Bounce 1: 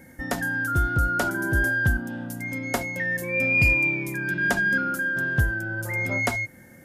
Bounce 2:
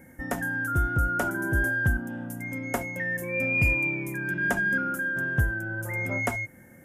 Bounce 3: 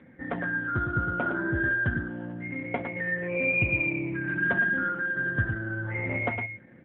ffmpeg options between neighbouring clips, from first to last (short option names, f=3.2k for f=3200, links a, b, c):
-af "equalizer=f=4.3k:w=1.8:g=-14,volume=-2dB"
-af "aecho=1:1:108:0.501" -ar 8000 -c:a libopencore_amrnb -b:a 7400